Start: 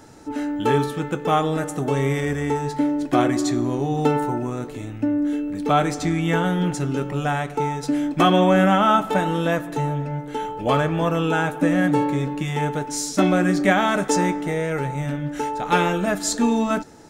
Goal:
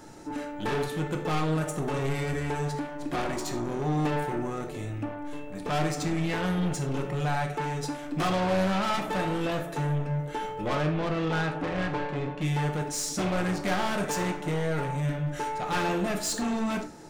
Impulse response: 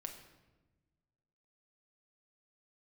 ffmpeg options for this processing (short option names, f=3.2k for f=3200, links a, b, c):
-filter_complex "[0:a]asettb=1/sr,asplit=3[a][b][c];[a]atrim=end=10.684[d];[b]atrim=start=10.68:end=12.41,asetpts=PTS-STARTPTS,afade=t=in:d=0.004:c=qsin,afade=t=out:st=1.726:d=0.004:c=qsin,lowpass=3.8k[e];[c]atrim=start=12.406[f];[d][e]acrossfade=d=0.004:c1=hsin:c2=qsin[g];[g][f]acrossfade=d=0.004:c1=qsin:c2=hsin,aeval=exprs='(tanh(15.8*val(0)+0.05)-tanh(0.05))/15.8':c=same[h];[1:a]atrim=start_sample=2205,atrim=end_sample=4410[i];[h][i]afir=irnorm=-1:irlink=0,volume=2.5dB"